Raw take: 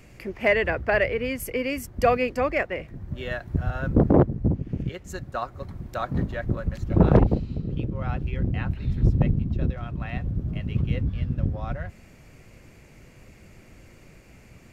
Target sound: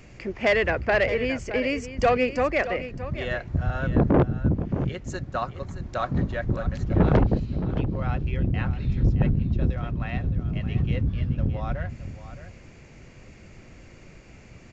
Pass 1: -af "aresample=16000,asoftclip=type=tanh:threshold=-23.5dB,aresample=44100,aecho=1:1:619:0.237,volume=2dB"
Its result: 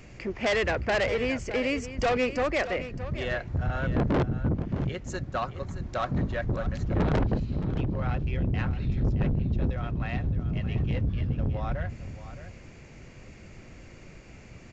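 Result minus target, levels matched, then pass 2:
soft clipping: distortion +7 dB
-af "aresample=16000,asoftclip=type=tanh:threshold=-15dB,aresample=44100,aecho=1:1:619:0.237,volume=2dB"

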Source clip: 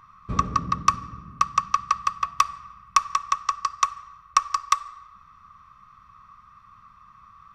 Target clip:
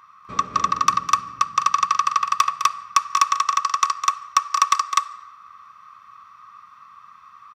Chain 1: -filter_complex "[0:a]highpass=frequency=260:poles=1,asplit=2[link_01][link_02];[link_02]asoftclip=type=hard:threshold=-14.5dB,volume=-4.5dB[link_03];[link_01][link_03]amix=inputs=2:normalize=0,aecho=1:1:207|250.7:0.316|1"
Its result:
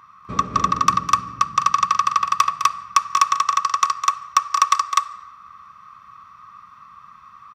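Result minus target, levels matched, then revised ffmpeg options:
250 Hz band +6.5 dB
-filter_complex "[0:a]highpass=frequency=840:poles=1,asplit=2[link_01][link_02];[link_02]asoftclip=type=hard:threshold=-14.5dB,volume=-4.5dB[link_03];[link_01][link_03]amix=inputs=2:normalize=0,aecho=1:1:207|250.7:0.316|1"

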